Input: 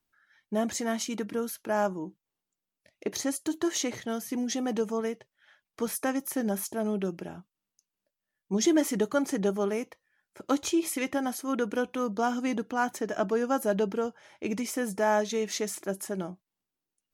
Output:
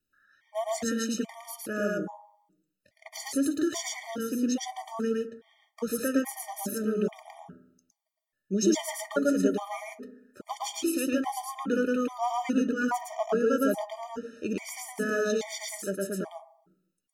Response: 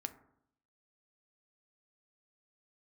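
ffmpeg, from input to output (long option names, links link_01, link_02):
-filter_complex "[0:a]asplit=2[link_01][link_02];[1:a]atrim=start_sample=2205,adelay=111[link_03];[link_02][link_03]afir=irnorm=-1:irlink=0,volume=2dB[link_04];[link_01][link_04]amix=inputs=2:normalize=0,afftfilt=real='re*gt(sin(2*PI*1.2*pts/sr)*(1-2*mod(floor(b*sr/1024/610),2)),0)':imag='im*gt(sin(2*PI*1.2*pts/sr)*(1-2*mod(floor(b*sr/1024/610),2)),0)':win_size=1024:overlap=0.75"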